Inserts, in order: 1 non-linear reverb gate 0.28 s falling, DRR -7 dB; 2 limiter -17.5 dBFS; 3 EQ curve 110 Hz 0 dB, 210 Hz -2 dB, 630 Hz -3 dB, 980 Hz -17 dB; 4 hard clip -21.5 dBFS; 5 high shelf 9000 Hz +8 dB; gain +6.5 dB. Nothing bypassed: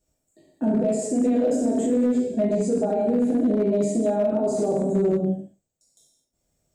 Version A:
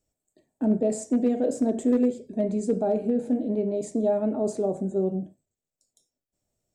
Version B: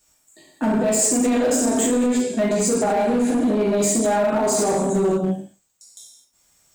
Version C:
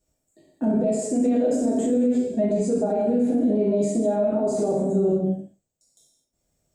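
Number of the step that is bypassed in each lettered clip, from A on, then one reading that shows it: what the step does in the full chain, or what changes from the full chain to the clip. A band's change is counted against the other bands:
1, momentary loudness spread change +2 LU; 3, 8 kHz band +14.5 dB; 4, distortion -29 dB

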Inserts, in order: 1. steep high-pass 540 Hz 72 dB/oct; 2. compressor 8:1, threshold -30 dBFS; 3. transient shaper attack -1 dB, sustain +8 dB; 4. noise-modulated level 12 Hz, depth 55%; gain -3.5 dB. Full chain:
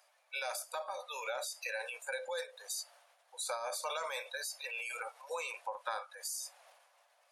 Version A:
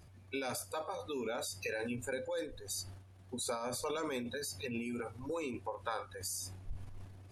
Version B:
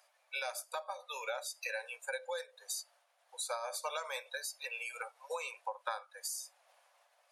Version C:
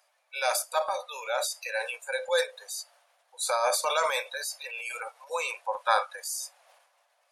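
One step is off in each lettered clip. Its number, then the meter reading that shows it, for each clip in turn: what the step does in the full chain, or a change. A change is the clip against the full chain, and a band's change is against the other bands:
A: 1, 500 Hz band +4.5 dB; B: 3, crest factor change +2.0 dB; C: 2, mean gain reduction 7.0 dB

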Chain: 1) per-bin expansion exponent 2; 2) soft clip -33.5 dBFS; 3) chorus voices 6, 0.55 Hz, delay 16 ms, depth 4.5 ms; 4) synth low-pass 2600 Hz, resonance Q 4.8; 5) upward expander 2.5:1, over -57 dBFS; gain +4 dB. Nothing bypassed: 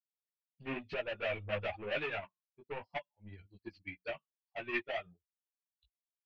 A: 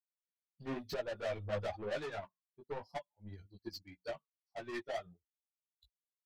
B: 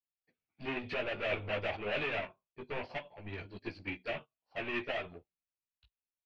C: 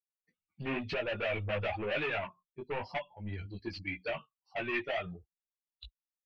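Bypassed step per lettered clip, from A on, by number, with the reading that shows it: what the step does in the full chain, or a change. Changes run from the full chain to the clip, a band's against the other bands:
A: 4, 2 kHz band -8.0 dB; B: 1, crest factor change -4.0 dB; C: 5, 125 Hz band +4.5 dB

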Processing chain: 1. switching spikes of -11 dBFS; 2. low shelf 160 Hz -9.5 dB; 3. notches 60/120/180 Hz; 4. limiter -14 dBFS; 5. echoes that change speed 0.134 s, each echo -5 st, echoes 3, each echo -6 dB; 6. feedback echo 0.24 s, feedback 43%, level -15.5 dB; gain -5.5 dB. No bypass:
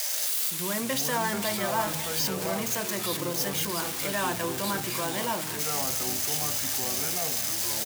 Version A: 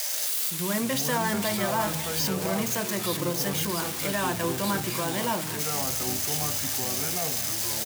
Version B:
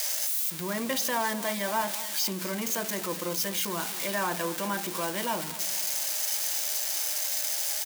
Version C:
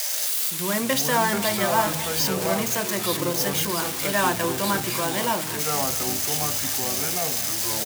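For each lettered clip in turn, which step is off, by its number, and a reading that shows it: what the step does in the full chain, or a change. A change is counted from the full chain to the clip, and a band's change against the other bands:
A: 2, 125 Hz band +4.0 dB; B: 5, 125 Hz band -4.0 dB; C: 4, mean gain reduction 4.0 dB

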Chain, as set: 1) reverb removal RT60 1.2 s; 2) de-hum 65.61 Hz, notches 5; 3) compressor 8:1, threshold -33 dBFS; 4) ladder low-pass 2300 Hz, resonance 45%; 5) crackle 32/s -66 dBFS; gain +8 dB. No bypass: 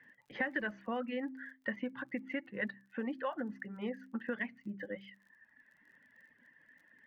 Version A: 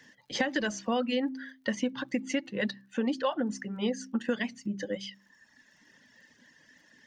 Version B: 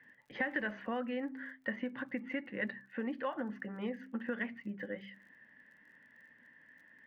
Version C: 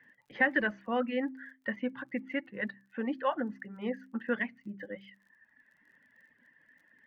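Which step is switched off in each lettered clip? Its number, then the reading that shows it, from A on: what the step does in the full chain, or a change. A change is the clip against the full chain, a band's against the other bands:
4, 4 kHz band +8.0 dB; 1, momentary loudness spread change +15 LU; 3, mean gain reduction 2.5 dB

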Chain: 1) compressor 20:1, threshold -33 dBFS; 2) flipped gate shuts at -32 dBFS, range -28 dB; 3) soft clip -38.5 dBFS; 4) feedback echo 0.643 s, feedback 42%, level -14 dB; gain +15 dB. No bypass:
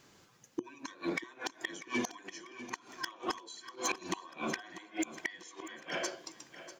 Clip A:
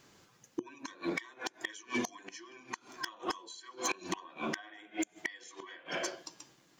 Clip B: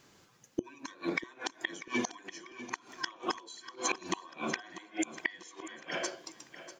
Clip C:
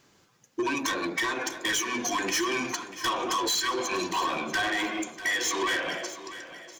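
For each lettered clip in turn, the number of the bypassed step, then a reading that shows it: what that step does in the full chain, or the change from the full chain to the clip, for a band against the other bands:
4, echo-to-direct -13.0 dB to none; 3, distortion -14 dB; 2, momentary loudness spread change -4 LU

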